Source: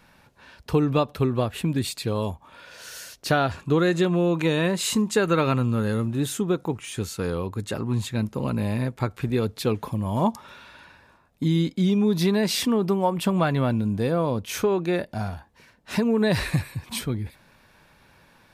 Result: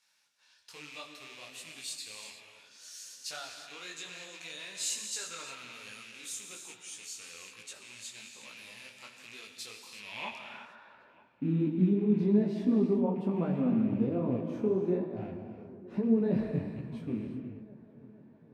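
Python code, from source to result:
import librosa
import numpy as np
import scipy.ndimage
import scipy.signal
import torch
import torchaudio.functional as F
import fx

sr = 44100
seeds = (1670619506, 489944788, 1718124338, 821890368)

y = fx.rattle_buzz(x, sr, strikes_db=-26.0, level_db=-22.0)
y = fx.filter_sweep_bandpass(y, sr, from_hz=6500.0, to_hz=270.0, start_s=9.89, end_s=11.3, q=1.5)
y = fx.echo_wet_lowpass(y, sr, ms=469, feedback_pct=63, hz=1800.0, wet_db=-17.5)
y = fx.rev_gated(y, sr, seeds[0], gate_ms=390, shape='flat', drr_db=4.0)
y = fx.detune_double(y, sr, cents=41)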